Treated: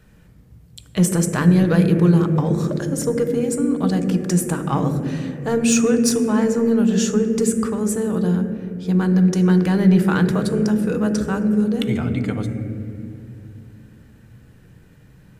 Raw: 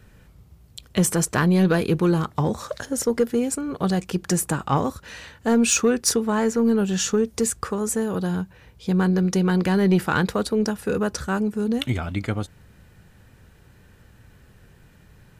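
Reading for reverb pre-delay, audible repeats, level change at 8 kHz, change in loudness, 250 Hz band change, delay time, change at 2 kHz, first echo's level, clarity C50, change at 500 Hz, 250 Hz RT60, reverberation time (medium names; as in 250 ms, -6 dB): 6 ms, no echo, -1.0 dB, +3.5 dB, +5.0 dB, no echo, -1.0 dB, no echo, 7.0 dB, +2.0 dB, 3.4 s, 2.8 s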